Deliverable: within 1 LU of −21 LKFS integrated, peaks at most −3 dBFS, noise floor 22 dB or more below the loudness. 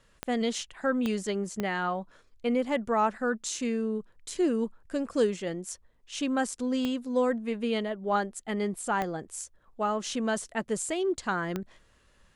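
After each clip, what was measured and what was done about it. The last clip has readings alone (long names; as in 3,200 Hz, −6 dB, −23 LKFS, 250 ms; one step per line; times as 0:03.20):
number of clicks 6; integrated loudness −30.5 LKFS; sample peak −13.5 dBFS; target loudness −21.0 LKFS
→ click removal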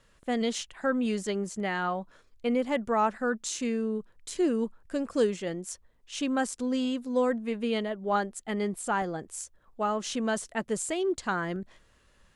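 number of clicks 0; integrated loudness −30.5 LKFS; sample peak −13.5 dBFS; target loudness −21.0 LKFS
→ level +9.5 dB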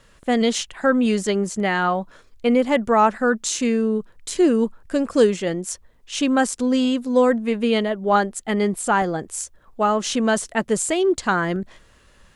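integrated loudness −21.0 LKFS; sample peak −4.0 dBFS; background noise floor −54 dBFS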